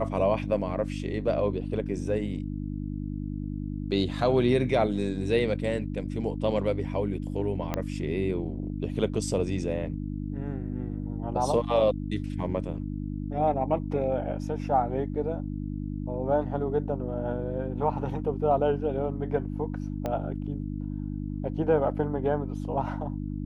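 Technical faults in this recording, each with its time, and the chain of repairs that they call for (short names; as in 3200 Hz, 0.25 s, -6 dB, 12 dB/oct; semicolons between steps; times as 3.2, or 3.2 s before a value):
hum 50 Hz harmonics 6 -33 dBFS
7.74 pop -14 dBFS
20.06 pop -18 dBFS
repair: de-click; de-hum 50 Hz, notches 6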